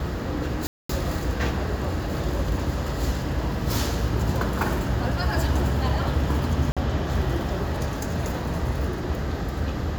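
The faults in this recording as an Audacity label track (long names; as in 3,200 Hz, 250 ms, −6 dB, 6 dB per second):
0.670000	0.890000	drop-out 224 ms
6.720000	6.770000	drop-out 46 ms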